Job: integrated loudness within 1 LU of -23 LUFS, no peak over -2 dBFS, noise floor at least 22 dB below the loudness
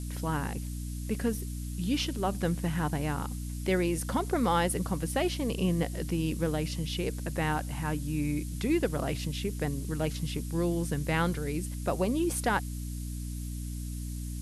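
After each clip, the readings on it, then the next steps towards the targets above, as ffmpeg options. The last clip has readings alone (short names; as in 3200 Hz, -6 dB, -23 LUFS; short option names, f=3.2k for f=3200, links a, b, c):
hum 60 Hz; harmonics up to 300 Hz; hum level -34 dBFS; noise floor -37 dBFS; noise floor target -54 dBFS; loudness -31.5 LUFS; peak -14.0 dBFS; loudness target -23.0 LUFS
-> -af "bandreject=f=60:t=h:w=4,bandreject=f=120:t=h:w=4,bandreject=f=180:t=h:w=4,bandreject=f=240:t=h:w=4,bandreject=f=300:t=h:w=4"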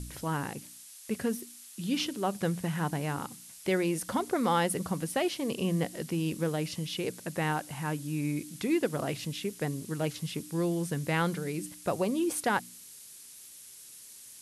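hum none; noise floor -50 dBFS; noise floor target -54 dBFS
-> -af "afftdn=nr=6:nf=-50"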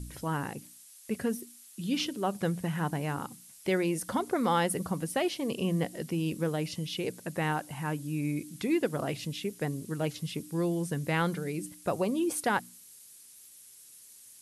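noise floor -54 dBFS; loudness -32.0 LUFS; peak -14.5 dBFS; loudness target -23.0 LUFS
-> -af "volume=9dB"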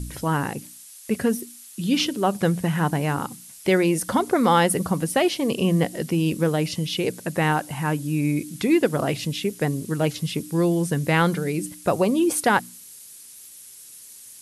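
loudness -23.0 LUFS; peak -5.5 dBFS; noise floor -45 dBFS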